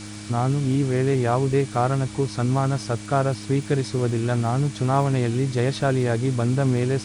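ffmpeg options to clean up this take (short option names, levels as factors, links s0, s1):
-af "adeclick=t=4,bandreject=f=104.2:t=h:w=4,bandreject=f=208.4:t=h:w=4,bandreject=f=312.6:t=h:w=4,bandreject=f=2300:w=30,afwtdn=0.01"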